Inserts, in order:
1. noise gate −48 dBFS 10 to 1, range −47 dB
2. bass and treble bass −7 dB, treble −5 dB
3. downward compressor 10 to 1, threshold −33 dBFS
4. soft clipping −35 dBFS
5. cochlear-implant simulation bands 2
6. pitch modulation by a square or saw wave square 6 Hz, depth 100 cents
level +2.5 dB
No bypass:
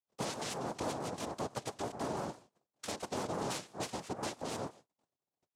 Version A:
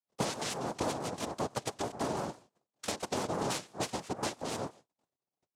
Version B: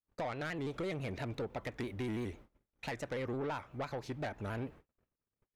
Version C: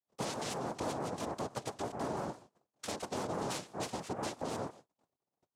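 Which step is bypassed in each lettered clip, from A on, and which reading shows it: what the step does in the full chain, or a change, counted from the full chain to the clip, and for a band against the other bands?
4, distortion level −11 dB
5, 8 kHz band −16.5 dB
2, 4 kHz band −1.5 dB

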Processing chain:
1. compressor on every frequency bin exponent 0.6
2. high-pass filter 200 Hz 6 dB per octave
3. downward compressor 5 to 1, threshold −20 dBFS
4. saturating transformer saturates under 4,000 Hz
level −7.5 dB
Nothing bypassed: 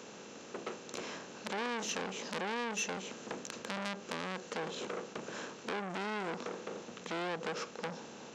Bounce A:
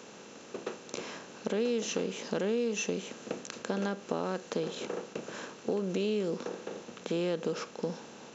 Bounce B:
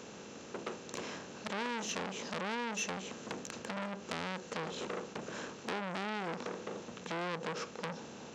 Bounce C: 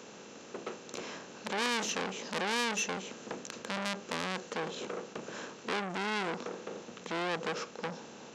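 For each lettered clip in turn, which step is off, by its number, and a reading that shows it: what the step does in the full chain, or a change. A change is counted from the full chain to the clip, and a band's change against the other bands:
4, change in crest factor −5.0 dB
2, 125 Hz band +3.0 dB
3, average gain reduction 1.5 dB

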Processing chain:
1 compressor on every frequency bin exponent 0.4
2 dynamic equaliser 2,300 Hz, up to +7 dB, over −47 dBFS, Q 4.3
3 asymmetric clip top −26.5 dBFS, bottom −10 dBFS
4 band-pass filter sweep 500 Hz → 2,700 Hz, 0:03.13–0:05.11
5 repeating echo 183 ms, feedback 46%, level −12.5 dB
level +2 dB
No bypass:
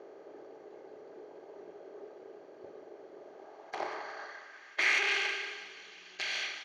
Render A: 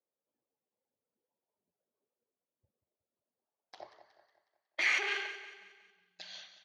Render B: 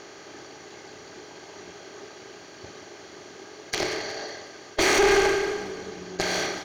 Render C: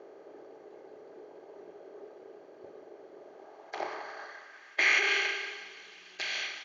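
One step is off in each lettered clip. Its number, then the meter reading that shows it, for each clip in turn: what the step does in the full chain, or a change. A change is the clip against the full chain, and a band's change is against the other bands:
1, 250 Hz band −4.0 dB
4, 2 kHz band −11.5 dB
3, distortion level −8 dB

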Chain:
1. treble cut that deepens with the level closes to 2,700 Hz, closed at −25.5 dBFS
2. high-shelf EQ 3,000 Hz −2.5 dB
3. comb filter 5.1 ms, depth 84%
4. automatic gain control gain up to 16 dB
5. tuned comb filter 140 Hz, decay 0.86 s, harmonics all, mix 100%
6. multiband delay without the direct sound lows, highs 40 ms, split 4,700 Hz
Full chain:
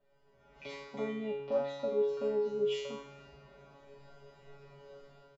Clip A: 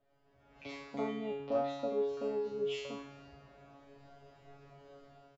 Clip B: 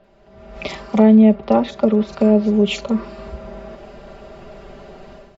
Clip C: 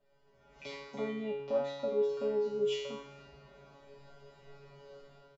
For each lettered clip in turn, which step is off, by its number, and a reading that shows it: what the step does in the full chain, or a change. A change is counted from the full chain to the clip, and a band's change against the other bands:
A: 3, change in crest factor +2.0 dB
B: 5, 250 Hz band +13.5 dB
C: 6, echo-to-direct ratio −28.0 dB to none audible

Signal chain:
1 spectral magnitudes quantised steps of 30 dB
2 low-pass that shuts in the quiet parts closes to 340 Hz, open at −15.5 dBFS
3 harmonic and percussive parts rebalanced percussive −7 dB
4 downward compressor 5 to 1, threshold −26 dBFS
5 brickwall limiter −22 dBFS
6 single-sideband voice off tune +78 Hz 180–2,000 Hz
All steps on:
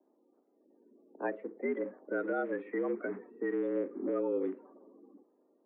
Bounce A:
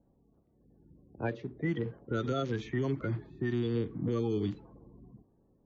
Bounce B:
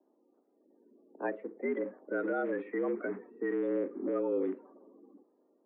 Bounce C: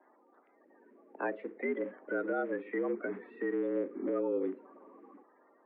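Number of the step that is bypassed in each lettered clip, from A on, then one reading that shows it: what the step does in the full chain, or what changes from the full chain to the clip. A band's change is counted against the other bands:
6, 250 Hz band +3.5 dB
4, average gain reduction 4.0 dB
2, 2 kHz band +1.5 dB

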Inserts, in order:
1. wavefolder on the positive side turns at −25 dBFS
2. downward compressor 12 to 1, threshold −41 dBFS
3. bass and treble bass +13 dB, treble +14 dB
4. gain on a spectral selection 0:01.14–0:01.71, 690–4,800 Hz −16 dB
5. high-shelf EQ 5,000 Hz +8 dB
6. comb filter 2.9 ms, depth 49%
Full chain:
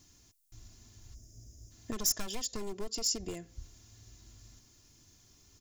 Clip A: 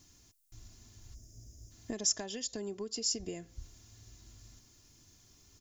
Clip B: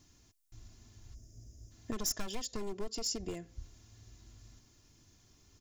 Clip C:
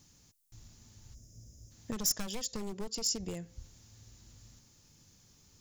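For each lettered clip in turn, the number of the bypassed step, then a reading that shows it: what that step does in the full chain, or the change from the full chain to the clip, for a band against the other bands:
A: 1, distortion level −2 dB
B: 5, 8 kHz band −5.0 dB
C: 6, change in momentary loudness spread −1 LU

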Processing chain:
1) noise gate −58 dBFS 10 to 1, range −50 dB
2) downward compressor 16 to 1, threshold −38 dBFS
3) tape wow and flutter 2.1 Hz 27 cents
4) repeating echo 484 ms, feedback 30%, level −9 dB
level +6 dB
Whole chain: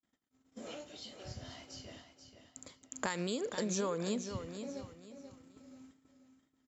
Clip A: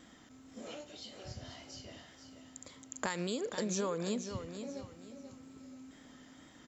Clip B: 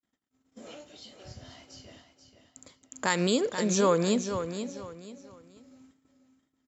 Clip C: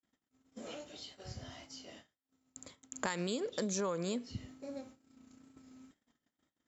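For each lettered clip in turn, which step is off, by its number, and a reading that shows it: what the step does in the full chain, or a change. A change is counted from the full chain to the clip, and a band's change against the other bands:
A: 1, change in momentary loudness spread −2 LU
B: 2, average gain reduction 3.0 dB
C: 4, change in momentary loudness spread +1 LU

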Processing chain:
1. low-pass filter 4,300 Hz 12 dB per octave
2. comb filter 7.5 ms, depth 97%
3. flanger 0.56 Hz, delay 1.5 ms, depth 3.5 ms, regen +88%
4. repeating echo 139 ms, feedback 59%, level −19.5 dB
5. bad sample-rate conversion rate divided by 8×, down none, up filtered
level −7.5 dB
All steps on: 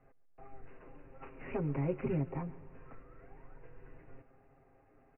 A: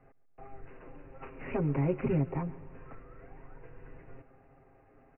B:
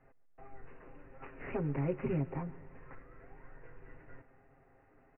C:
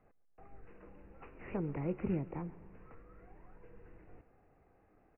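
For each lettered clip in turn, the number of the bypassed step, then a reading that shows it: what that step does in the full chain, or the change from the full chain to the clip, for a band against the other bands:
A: 3, change in integrated loudness +4.5 LU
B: 1, 2 kHz band +2.0 dB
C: 2, 250 Hz band +2.5 dB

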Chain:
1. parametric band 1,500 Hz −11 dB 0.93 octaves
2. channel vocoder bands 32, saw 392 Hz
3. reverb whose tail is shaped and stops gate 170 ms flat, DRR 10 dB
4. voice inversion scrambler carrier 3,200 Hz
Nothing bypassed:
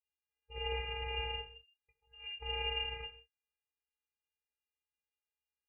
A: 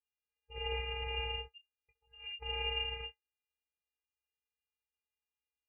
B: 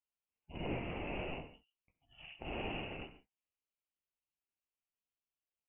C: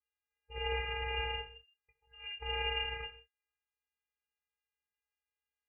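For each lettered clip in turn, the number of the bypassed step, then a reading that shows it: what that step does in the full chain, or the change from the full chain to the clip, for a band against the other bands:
3, 1 kHz band −1.5 dB
2, 2 kHz band −5.5 dB
1, change in integrated loudness +1.5 LU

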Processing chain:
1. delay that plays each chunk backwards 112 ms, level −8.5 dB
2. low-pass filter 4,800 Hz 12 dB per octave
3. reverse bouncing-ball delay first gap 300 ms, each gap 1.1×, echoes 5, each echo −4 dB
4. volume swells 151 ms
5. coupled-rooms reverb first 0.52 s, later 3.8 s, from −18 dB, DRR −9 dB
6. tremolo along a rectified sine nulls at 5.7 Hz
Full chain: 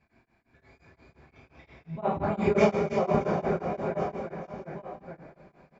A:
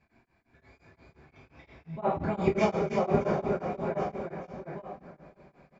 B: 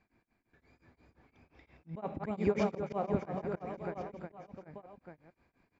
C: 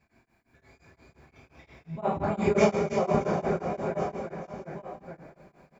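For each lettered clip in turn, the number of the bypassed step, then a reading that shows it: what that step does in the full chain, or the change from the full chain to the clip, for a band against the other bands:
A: 1, change in momentary loudness spread −4 LU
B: 5, 250 Hz band +2.5 dB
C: 2, 4 kHz band +1.5 dB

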